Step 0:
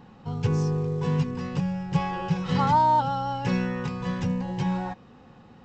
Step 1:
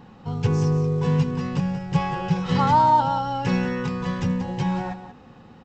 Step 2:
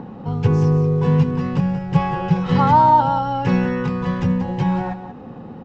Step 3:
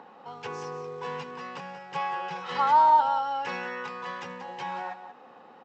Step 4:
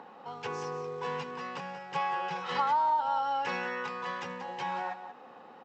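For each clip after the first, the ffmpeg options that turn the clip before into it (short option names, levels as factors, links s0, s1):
-af "aecho=1:1:182:0.266,volume=1.41"
-filter_complex "[0:a]lowpass=f=2000:p=1,acrossover=split=120|840[s0][s1][s2];[s1]acompressor=mode=upward:threshold=0.0282:ratio=2.5[s3];[s0][s3][s2]amix=inputs=3:normalize=0,volume=1.78"
-af "highpass=780,volume=0.631"
-af "acompressor=threshold=0.0562:ratio=6"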